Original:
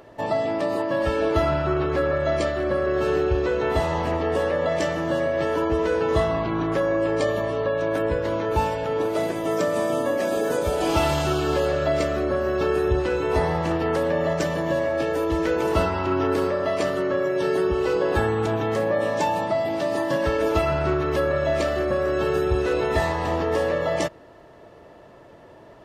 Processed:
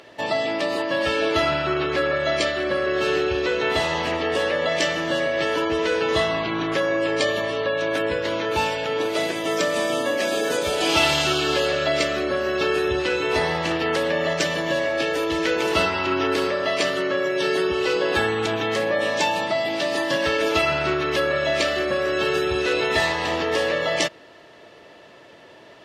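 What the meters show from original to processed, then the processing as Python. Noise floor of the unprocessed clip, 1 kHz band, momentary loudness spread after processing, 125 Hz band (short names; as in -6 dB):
-48 dBFS, +0.5 dB, 3 LU, -6.0 dB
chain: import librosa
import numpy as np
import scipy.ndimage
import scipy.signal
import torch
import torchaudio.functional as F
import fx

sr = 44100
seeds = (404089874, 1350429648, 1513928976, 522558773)

y = fx.weighting(x, sr, curve='D')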